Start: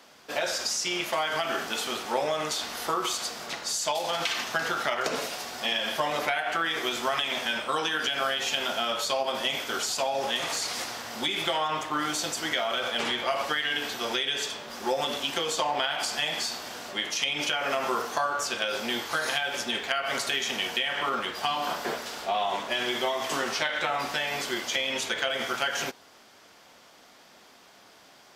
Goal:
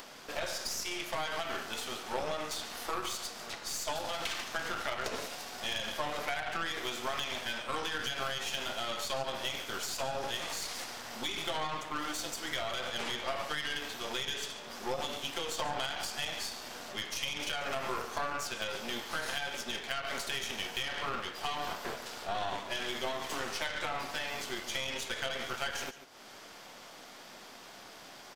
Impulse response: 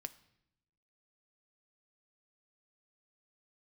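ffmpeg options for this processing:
-af "aecho=1:1:142:0.188,acompressor=mode=upward:threshold=-30dB:ratio=2.5,aeval=exprs='0.251*(cos(1*acos(clip(val(0)/0.251,-1,1)))-cos(1*PI/2))+0.0282*(cos(8*acos(clip(val(0)/0.251,-1,1)))-cos(8*PI/2))':channel_layout=same,volume=-8.5dB"

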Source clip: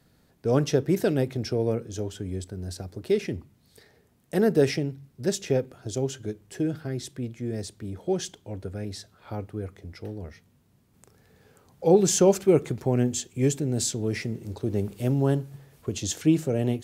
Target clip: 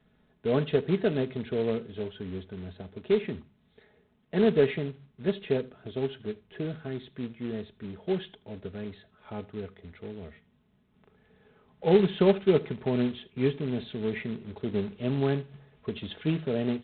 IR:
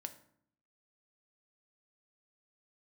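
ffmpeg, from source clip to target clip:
-af "aecho=1:1:4.7:0.52,aresample=8000,acrusher=bits=4:mode=log:mix=0:aa=0.000001,aresample=44100,aecho=1:1:79:0.0841,volume=-4dB"

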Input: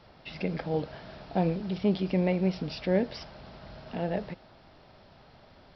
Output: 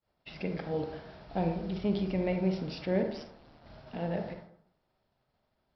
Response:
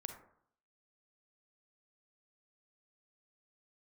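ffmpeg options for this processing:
-filter_complex "[0:a]asplit=3[link_01][link_02][link_03];[link_01]afade=type=out:start_time=1.26:duration=0.02[link_04];[link_02]asubboost=boost=4:cutoff=110,afade=type=in:start_time=1.26:duration=0.02,afade=type=out:start_time=2.34:duration=0.02[link_05];[link_03]afade=type=in:start_time=2.34:duration=0.02[link_06];[link_04][link_05][link_06]amix=inputs=3:normalize=0,agate=range=-33dB:threshold=-42dB:ratio=3:detection=peak,asplit=3[link_07][link_08][link_09];[link_07]afade=type=out:start_time=3.02:duration=0.02[link_10];[link_08]aeval=exprs='val(0)*sin(2*PI*76*n/s)':channel_layout=same,afade=type=in:start_time=3.02:duration=0.02,afade=type=out:start_time=3.64:duration=0.02[link_11];[link_09]afade=type=in:start_time=3.64:duration=0.02[link_12];[link_10][link_11][link_12]amix=inputs=3:normalize=0[link_13];[1:a]atrim=start_sample=2205[link_14];[link_13][link_14]afir=irnorm=-1:irlink=0"

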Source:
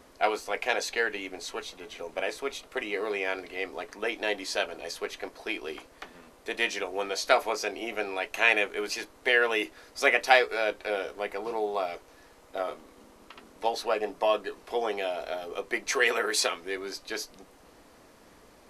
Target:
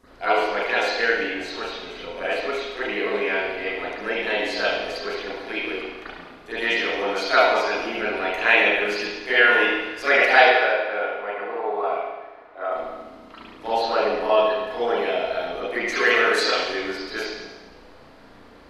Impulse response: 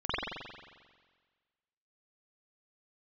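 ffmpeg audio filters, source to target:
-filter_complex "[0:a]asettb=1/sr,asplit=3[link_01][link_02][link_03];[link_01]atrim=end=10.494[link_04];[link_02]atrim=start=10.49:end=12.72,asetpts=PTS-STARTPTS,afade=type=in:duration=0.004:curve=qsin,afade=type=out:start_time=2.226:duration=0.004:curve=qsin,acrossover=split=390 2500:gain=0.178 1 0.1[link_05][link_06][link_07];[link_05][link_06][link_07]amix=inputs=3:normalize=0[link_08];[link_03]atrim=start=12.716[link_09];[link_04][link_08]acrossfade=duration=0.004:curve1=hsin:curve2=qsin[link_10];[link_10][link_09]acrossfade=duration=0.004:curve1=qsin:curve2=hsin[link_11];[1:a]atrim=start_sample=2205,asetrate=57330,aresample=44100[link_12];[link_11][link_12]afir=irnorm=-1:irlink=0,volume=-1dB"

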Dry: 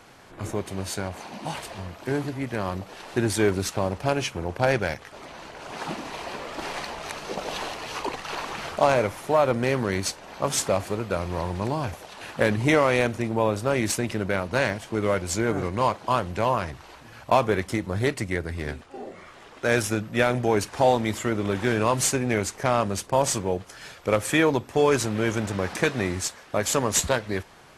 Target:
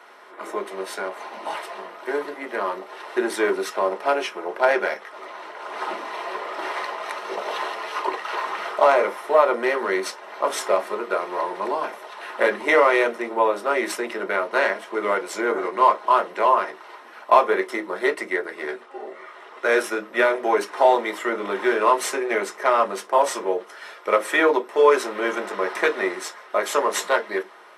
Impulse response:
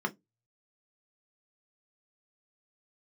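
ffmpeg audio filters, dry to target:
-filter_complex "[0:a]highpass=frequency=410:width=0.5412,highpass=frequency=410:width=1.3066[link_01];[1:a]atrim=start_sample=2205[link_02];[link_01][link_02]afir=irnorm=-1:irlink=0,volume=-1.5dB"

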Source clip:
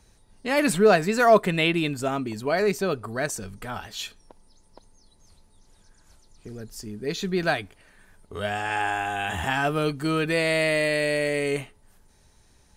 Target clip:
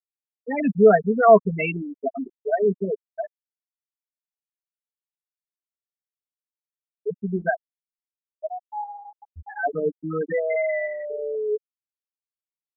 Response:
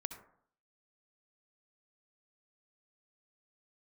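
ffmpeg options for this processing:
-af "afftfilt=real='re*gte(hypot(re,im),0.316)':imag='im*gte(hypot(re,im),0.316)':win_size=1024:overlap=0.75,aecho=1:1:4.4:0.72"

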